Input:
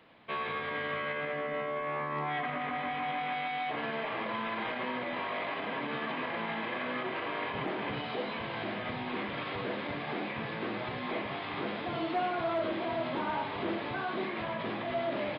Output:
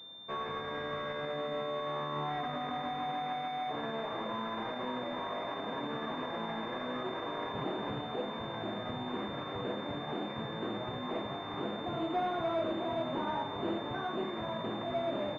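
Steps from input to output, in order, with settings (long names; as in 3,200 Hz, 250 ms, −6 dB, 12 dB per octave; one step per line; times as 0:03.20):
high-frequency loss of the air 220 metres
switching amplifier with a slow clock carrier 3,600 Hz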